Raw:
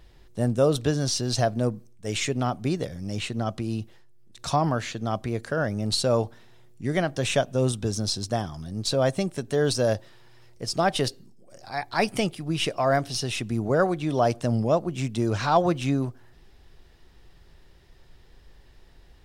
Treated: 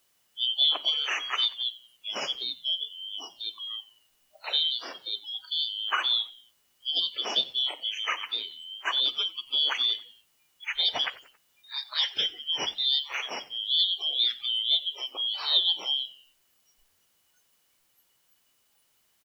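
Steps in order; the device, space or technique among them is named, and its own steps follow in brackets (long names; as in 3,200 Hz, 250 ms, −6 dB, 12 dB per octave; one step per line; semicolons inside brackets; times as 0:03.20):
0:02.53–0:03.39: Bessel low-pass filter 2,600 Hz, order 8
split-band scrambled radio (band-splitting scrambler in four parts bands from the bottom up 3412; band-pass filter 320–3,400 Hz; white noise bed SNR 12 dB)
noise reduction from a noise print of the clip's start 28 dB
echo with shifted repeats 91 ms, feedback 45%, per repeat −100 Hz, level −19.5 dB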